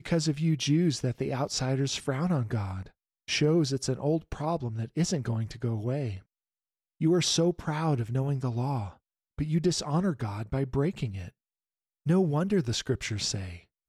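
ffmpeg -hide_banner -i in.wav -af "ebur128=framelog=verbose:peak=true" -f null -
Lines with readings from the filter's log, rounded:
Integrated loudness:
  I:         -29.0 LUFS
  Threshold: -39.4 LUFS
Loudness range:
  LRA:         2.7 LU
  Threshold: -49.9 LUFS
  LRA low:   -31.4 LUFS
  LRA high:  -28.8 LUFS
True peak:
  Peak:      -14.7 dBFS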